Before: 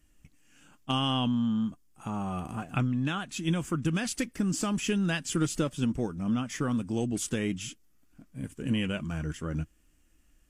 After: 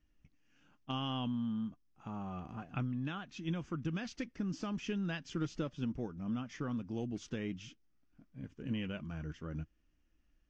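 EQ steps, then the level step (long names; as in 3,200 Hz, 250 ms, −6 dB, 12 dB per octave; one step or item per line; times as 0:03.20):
low-pass with resonance 6,100 Hz, resonance Q 3.1
high-frequency loss of the air 250 metres
−8.5 dB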